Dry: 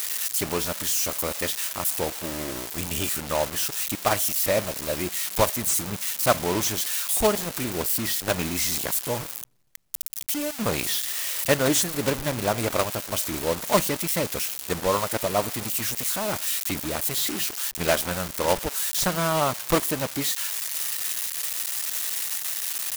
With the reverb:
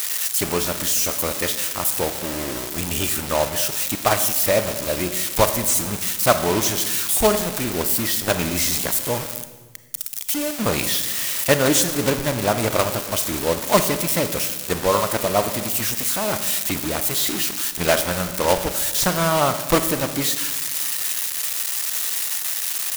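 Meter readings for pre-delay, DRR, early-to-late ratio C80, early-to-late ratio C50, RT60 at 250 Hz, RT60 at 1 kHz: 29 ms, 9.5 dB, 12.0 dB, 10.5 dB, 1.7 s, 1.2 s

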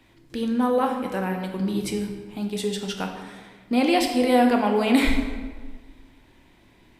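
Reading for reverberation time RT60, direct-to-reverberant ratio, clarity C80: 1.5 s, 3.0 dB, 7.0 dB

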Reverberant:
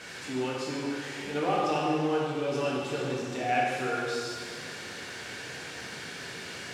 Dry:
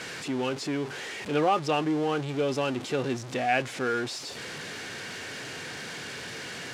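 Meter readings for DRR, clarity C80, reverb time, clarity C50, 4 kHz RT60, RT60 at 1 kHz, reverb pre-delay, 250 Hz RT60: -5.0 dB, 0.5 dB, 2.0 s, -1.5 dB, 1.9 s, 2.0 s, 6 ms, 2.0 s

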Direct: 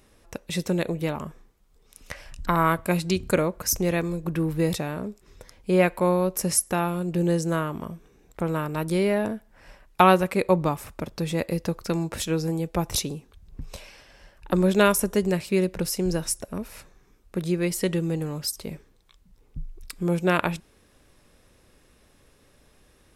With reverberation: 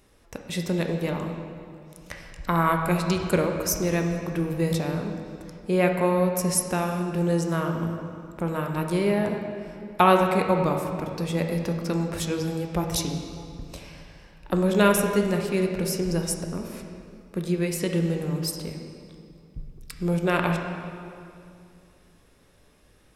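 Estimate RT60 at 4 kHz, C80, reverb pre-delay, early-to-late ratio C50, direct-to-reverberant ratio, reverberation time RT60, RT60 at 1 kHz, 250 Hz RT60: 1.8 s, 5.5 dB, 11 ms, 4.5 dB, 3.0 dB, 2.5 s, 2.4 s, 2.8 s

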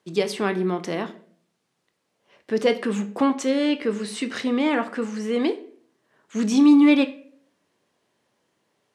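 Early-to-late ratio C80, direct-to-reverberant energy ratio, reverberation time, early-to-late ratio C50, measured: 19.5 dB, 9.0 dB, 0.55 s, 15.5 dB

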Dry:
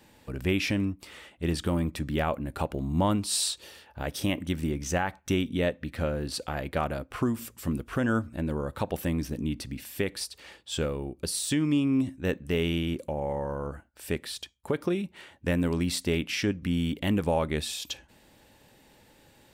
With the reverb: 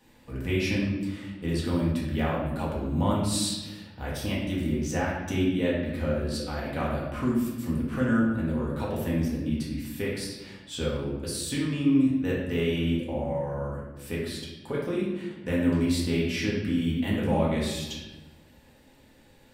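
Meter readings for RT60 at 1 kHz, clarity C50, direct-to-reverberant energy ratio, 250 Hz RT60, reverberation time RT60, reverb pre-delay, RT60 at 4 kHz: 1.0 s, 1.5 dB, -6.0 dB, 1.6 s, 1.1 s, 4 ms, 0.85 s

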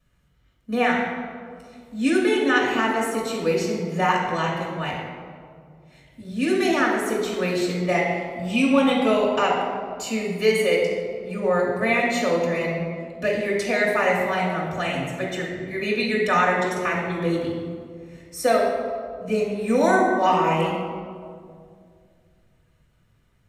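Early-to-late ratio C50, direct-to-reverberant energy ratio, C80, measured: 1.5 dB, -7.0 dB, 4.0 dB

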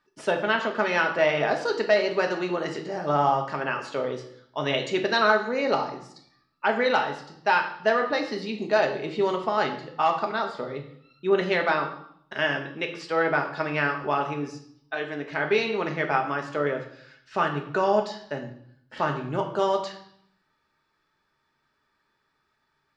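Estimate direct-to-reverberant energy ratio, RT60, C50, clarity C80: 3.0 dB, 0.65 s, 9.0 dB, 12.0 dB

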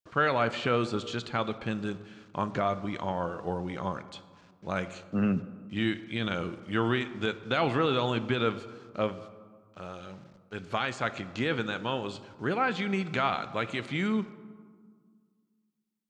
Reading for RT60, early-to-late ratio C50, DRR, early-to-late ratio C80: 1.8 s, 14.5 dB, 12.0 dB, 15.5 dB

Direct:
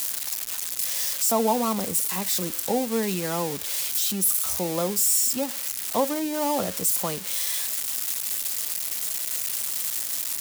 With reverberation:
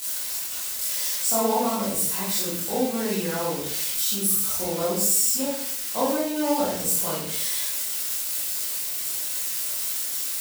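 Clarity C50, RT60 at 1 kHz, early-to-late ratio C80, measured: 0.5 dB, 0.55 s, 5.5 dB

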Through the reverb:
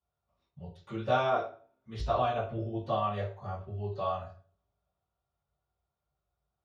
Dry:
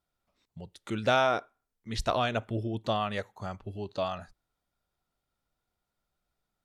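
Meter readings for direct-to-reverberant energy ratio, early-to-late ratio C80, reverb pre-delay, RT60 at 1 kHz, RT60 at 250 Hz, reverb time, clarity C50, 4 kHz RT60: -16.0 dB, 10.5 dB, 3 ms, 0.40 s, 0.50 s, 0.45 s, 6.5 dB, 0.35 s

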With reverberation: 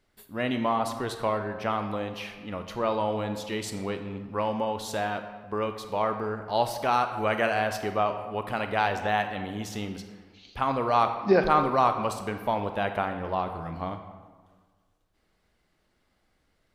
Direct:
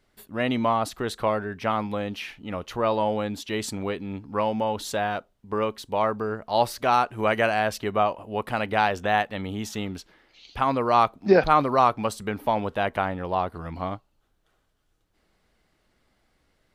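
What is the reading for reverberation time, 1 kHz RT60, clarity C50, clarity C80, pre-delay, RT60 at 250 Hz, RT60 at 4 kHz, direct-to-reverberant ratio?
1.5 s, 1.5 s, 8.0 dB, 10.0 dB, 25 ms, 1.6 s, 0.90 s, 7.0 dB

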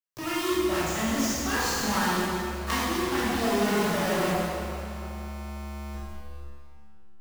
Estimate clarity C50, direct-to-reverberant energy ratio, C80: -4.5 dB, -11.0 dB, -2.0 dB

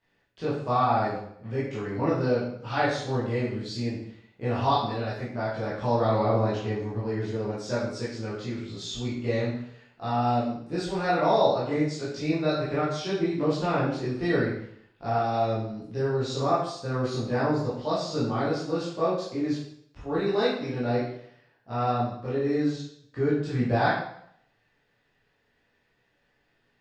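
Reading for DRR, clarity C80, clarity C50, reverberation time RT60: -10.5 dB, 5.5 dB, 2.0 dB, 0.65 s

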